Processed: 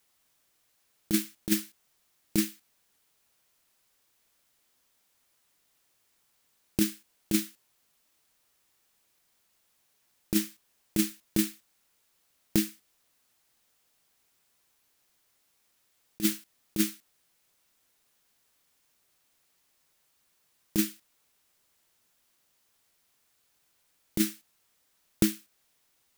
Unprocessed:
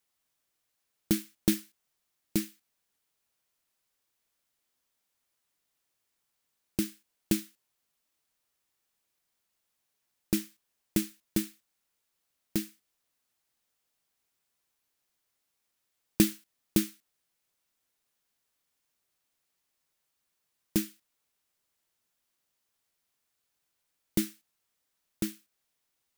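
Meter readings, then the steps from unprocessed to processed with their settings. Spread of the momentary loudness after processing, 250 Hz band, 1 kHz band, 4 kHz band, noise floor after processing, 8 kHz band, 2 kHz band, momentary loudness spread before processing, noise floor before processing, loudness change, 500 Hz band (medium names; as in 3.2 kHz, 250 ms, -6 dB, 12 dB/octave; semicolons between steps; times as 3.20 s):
8 LU, +1.5 dB, +1.5 dB, +3.5 dB, -72 dBFS, +3.5 dB, +3.5 dB, 15 LU, -81 dBFS, +2.0 dB, +0.5 dB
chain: compressor with a negative ratio -28 dBFS, ratio -0.5; trim +5.5 dB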